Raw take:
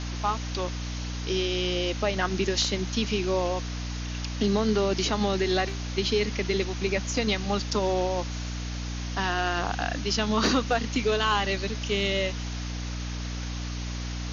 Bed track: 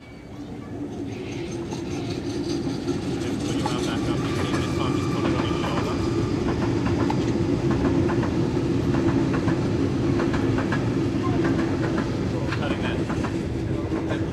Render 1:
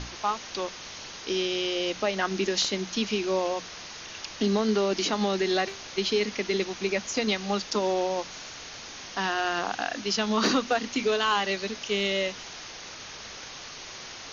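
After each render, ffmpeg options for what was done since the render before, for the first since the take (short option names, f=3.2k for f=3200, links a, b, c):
-af "bandreject=f=60:t=h:w=6,bandreject=f=120:t=h:w=6,bandreject=f=180:t=h:w=6,bandreject=f=240:t=h:w=6,bandreject=f=300:t=h:w=6"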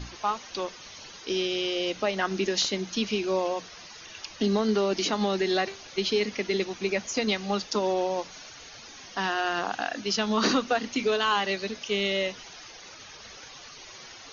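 -af "afftdn=nr=10:nf=-42"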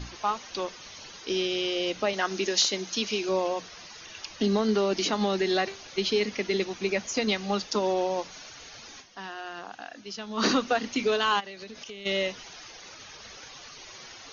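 -filter_complex "[0:a]asettb=1/sr,asplit=3[a][b][c];[a]atrim=end=2.134[d];[b]atrim=start=2.13:end=3.29,asetpts=PTS-STARTPTS,afade=t=in:d=0.004:c=qsin,afade=t=out:st=1.156:d=0.004:c=qsin,bass=f=250:g=-8,treble=f=4k:g=5[e];[c]atrim=start=3.286[f];[d][e]acrossfade=d=0.004:c1=hsin:c2=qsin[g];[g][f]acrossfade=d=0.004:c1=qsin:c2=hsin,asplit=3[h][i][j];[h]afade=t=out:st=11.39:d=0.02[k];[i]acompressor=threshold=-37dB:ratio=20:attack=3.2:release=140:knee=1:detection=peak,afade=t=in:st=11.39:d=0.02,afade=t=out:st=12.05:d=0.02[l];[j]afade=t=in:st=12.05:d=0.02[m];[k][l][m]amix=inputs=3:normalize=0,asplit=3[n][o][p];[n]atrim=end=9.22,asetpts=PTS-STARTPTS,afade=t=out:st=9:d=0.22:c=exp:silence=0.281838[q];[o]atrim=start=9.22:end=10.18,asetpts=PTS-STARTPTS,volume=-11dB[r];[p]atrim=start=10.18,asetpts=PTS-STARTPTS,afade=t=in:d=0.22:c=exp:silence=0.281838[s];[q][r][s]concat=n=3:v=0:a=1"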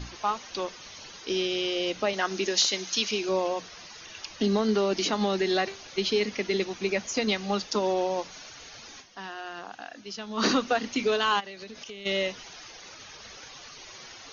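-filter_complex "[0:a]asettb=1/sr,asplit=3[a][b][c];[a]atrim=end=2.684[d];[b]atrim=start=2.68:end=3.11,asetpts=PTS-STARTPTS,afade=t=in:d=0.004:c=qsin,afade=t=out:st=0.426:d=0.004:c=qsin,tiltshelf=f=970:g=-4[e];[c]atrim=start=3.106[f];[d][e]acrossfade=d=0.004:c1=hsin:c2=qsin[g];[g][f]acrossfade=d=0.004:c1=qsin:c2=hsin"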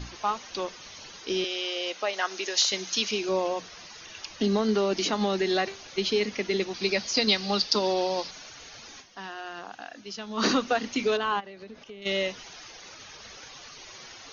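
-filter_complex "[0:a]asettb=1/sr,asplit=3[a][b][c];[a]atrim=end=1.444[d];[b]atrim=start=1.44:end=2.72,asetpts=PTS-STARTPTS,afade=t=in:d=0.004:c=qsin,afade=t=out:st=1.276:d=0.004:c=qsin,highpass=530[e];[c]atrim=start=2.716[f];[d][e]acrossfade=d=0.004:c1=hsin:c2=qsin[g];[g][f]acrossfade=d=0.004:c1=qsin:c2=hsin,asettb=1/sr,asplit=3[h][i][j];[h]atrim=end=6.744[k];[i]atrim=start=6.74:end=8.31,asetpts=PTS-STARTPTS,afade=t=in:d=0.004:c=qsin,afade=t=out:st=1.566:d=0.004:c=qsin,lowpass=f=4.7k:t=q:w=4.1[l];[j]atrim=start=8.306[m];[k][l]acrossfade=d=0.004:c1=hsin:c2=qsin[n];[n][m]acrossfade=d=0.004:c1=qsin:c2=hsin,asettb=1/sr,asplit=3[o][p][q];[o]atrim=end=11.174[r];[p]atrim=start=11.17:end=12.02,asetpts=PTS-STARTPTS,afade=t=in:d=0.004:c=qsin,afade=t=out:st=0.846:d=0.004:c=qsin,lowpass=f=1.3k:p=1[s];[q]atrim=start=12.016[t];[r][s]acrossfade=d=0.004:c1=hsin:c2=qsin[u];[u][t]acrossfade=d=0.004:c1=qsin:c2=hsin"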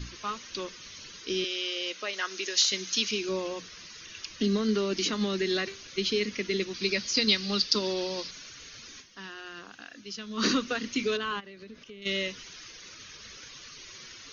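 -af "equalizer=f=740:t=o:w=0.86:g=-14.5,bandreject=f=850:w=15"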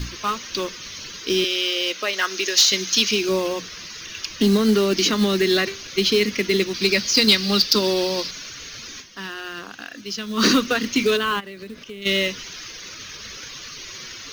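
-af "aeval=exprs='0.398*sin(PI/2*2*val(0)/0.398)':c=same,acrusher=bits=5:mode=log:mix=0:aa=0.000001"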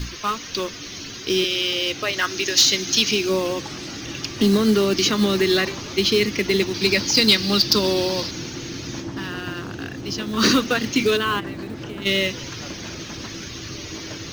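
-filter_complex "[1:a]volume=-10.5dB[a];[0:a][a]amix=inputs=2:normalize=0"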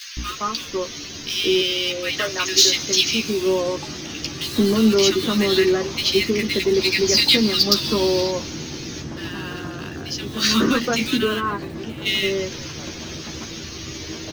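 -filter_complex "[0:a]asplit=2[a][b];[b]adelay=13,volume=-5dB[c];[a][c]amix=inputs=2:normalize=0,acrossover=split=1500[d][e];[d]adelay=170[f];[f][e]amix=inputs=2:normalize=0"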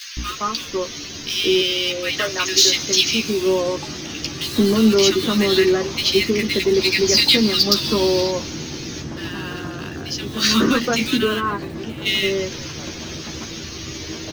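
-af "volume=1.5dB,alimiter=limit=-3dB:level=0:latency=1"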